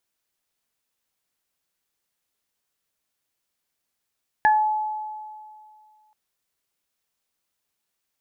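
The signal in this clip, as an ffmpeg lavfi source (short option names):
-f lavfi -i "aevalsrc='0.211*pow(10,-3*t/2.2)*sin(2*PI*857*t)+0.168*pow(10,-3*t/0.25)*sin(2*PI*1714*t)':d=1.68:s=44100"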